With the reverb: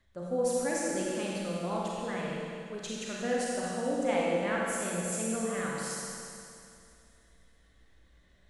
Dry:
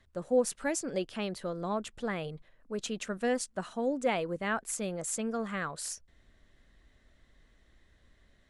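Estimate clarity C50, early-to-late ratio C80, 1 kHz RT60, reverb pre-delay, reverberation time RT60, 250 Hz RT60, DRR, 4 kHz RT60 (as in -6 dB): -3.0 dB, -1.5 dB, 2.5 s, 31 ms, 2.5 s, 2.5 s, -5.0 dB, 2.5 s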